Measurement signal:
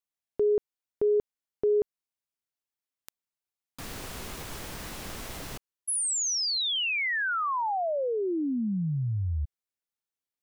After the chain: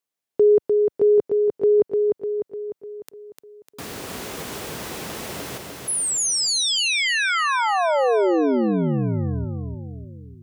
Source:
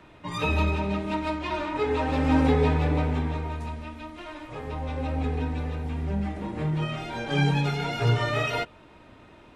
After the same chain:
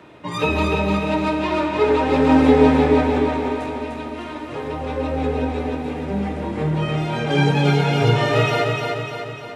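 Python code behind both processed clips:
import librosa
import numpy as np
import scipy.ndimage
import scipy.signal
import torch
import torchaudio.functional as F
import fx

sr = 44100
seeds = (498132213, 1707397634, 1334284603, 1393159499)

y = scipy.signal.sosfilt(scipy.signal.butter(2, 100.0, 'highpass', fs=sr, output='sos'), x)
y = fx.peak_eq(y, sr, hz=440.0, db=4.5, octaves=1.2)
y = fx.echo_feedback(y, sr, ms=300, feedback_pct=54, wet_db=-4)
y = y * librosa.db_to_amplitude(5.0)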